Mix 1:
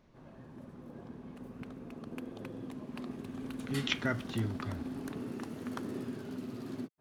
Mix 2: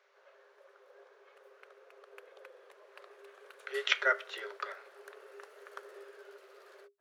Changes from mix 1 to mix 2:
speech +9.5 dB; master: add rippled Chebyshev high-pass 390 Hz, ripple 9 dB

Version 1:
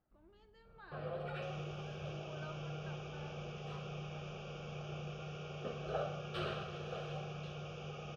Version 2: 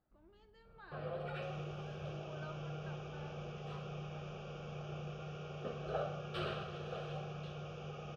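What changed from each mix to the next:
second sound -3.5 dB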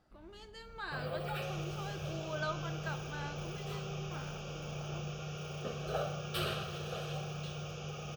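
speech +10.5 dB; first sound: add bell 84 Hz +5.5 dB 2.4 oct; master: remove tape spacing loss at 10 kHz 25 dB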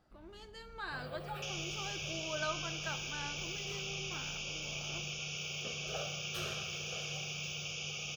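first sound -6.5 dB; second sound +10.5 dB

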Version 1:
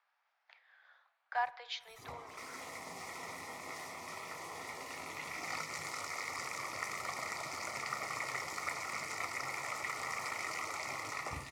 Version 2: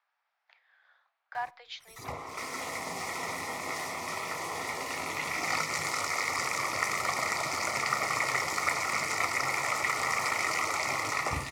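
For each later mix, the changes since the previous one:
background +10.0 dB; reverb: off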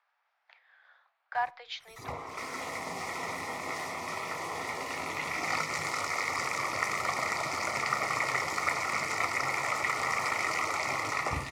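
speech +4.5 dB; master: add high shelf 5300 Hz -6.5 dB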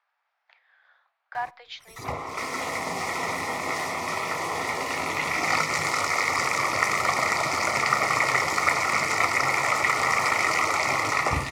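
background +7.5 dB

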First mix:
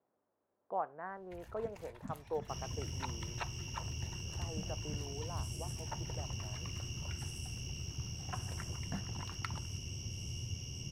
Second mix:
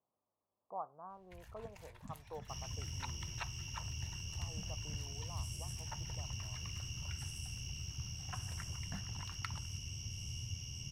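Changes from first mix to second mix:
speech: add elliptic low-pass 1200 Hz, stop band 40 dB; master: add bell 380 Hz -11.5 dB 2 oct

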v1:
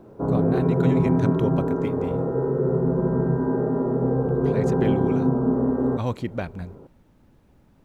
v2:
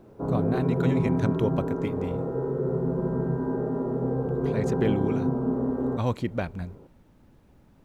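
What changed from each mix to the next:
background -5.0 dB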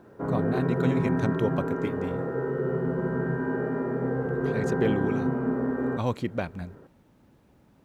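background: remove LPF 1100 Hz 24 dB/oct; master: add HPF 110 Hz 6 dB/oct

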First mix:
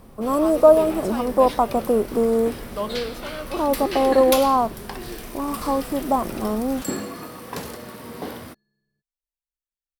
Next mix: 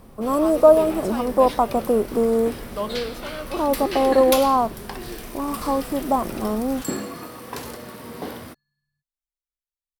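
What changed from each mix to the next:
second sound: add Chebyshev band-stop 150–1000 Hz, order 3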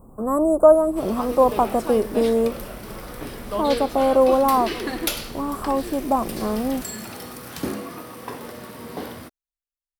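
first sound: entry +0.75 s

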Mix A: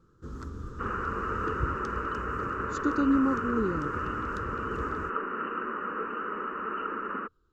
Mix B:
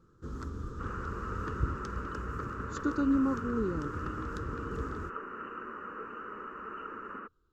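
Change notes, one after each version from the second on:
speech -3.0 dB; second sound -8.5 dB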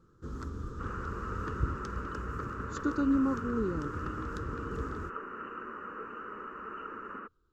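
none

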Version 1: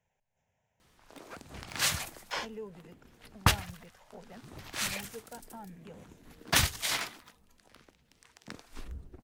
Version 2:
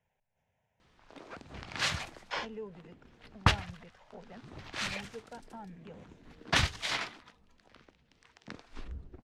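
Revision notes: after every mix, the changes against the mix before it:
master: add LPF 4500 Hz 12 dB/oct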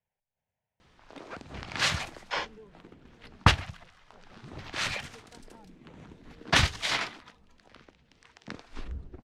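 speech -9.5 dB; background +4.5 dB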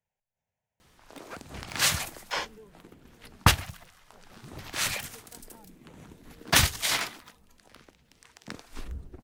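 master: remove LPF 4500 Hz 12 dB/oct

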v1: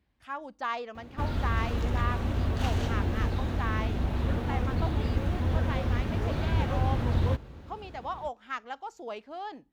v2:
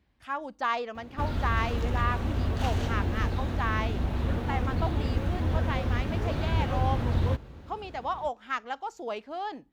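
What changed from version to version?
speech +4.0 dB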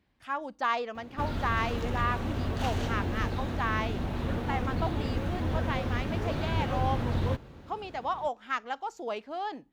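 master: add bell 62 Hz -9 dB 0.8 oct

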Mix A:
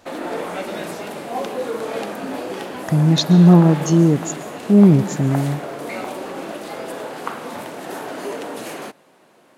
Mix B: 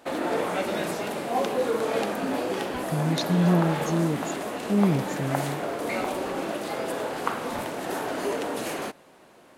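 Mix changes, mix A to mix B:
speech -11.5 dB; background: remove HPF 110 Hz 24 dB/oct

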